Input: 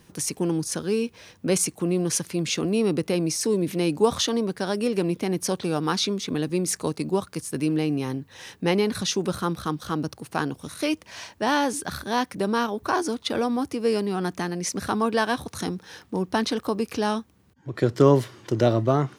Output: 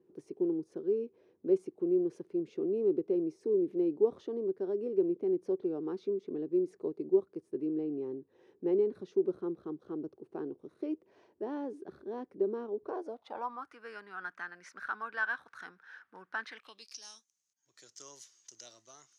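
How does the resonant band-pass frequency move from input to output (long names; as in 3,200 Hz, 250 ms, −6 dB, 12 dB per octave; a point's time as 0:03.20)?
resonant band-pass, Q 6.5
0:12.79 380 Hz
0:13.73 1,500 Hz
0:16.42 1,500 Hz
0:17.01 6,400 Hz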